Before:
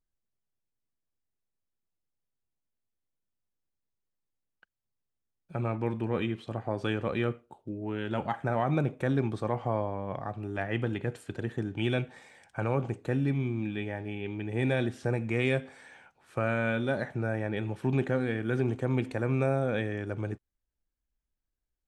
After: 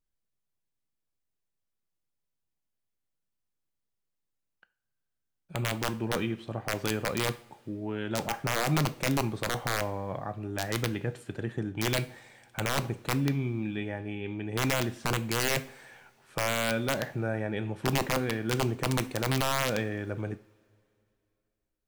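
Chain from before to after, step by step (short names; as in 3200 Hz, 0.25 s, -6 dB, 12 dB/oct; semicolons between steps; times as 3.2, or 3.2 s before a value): wrapped overs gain 19 dB; two-slope reverb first 0.4 s, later 2.7 s, from -22 dB, DRR 12 dB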